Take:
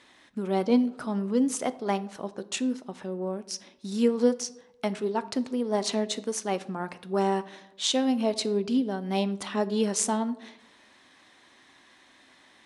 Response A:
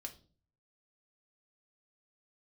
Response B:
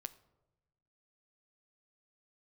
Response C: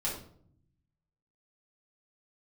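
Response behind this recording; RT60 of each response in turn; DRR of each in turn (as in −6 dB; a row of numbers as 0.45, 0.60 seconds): B; 0.40, 1.0, 0.60 seconds; 3.5, 13.0, −7.0 decibels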